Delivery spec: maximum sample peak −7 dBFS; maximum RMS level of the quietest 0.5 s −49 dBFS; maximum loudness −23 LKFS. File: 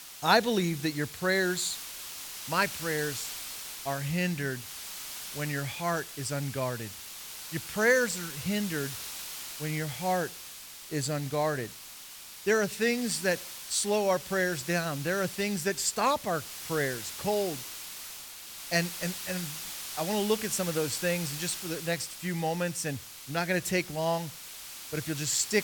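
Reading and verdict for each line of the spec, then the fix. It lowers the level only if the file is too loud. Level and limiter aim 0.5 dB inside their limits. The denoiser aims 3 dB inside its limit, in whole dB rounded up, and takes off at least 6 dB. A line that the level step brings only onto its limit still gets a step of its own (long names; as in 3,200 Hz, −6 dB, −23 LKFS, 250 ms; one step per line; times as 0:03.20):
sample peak −9.5 dBFS: in spec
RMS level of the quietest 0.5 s −46 dBFS: out of spec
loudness −30.5 LKFS: in spec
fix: broadband denoise 6 dB, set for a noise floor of −46 dBFS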